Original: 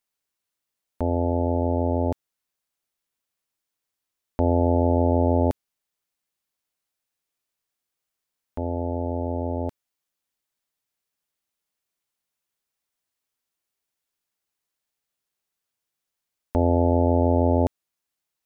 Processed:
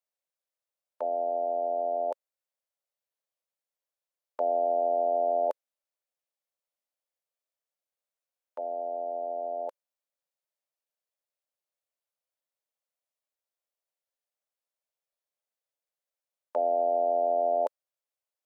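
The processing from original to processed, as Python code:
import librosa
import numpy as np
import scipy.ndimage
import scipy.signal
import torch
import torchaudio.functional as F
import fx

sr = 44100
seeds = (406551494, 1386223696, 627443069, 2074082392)

y = fx.formant_shift(x, sr, semitones=4)
y = fx.ladder_highpass(y, sr, hz=500.0, resonance_pct=65)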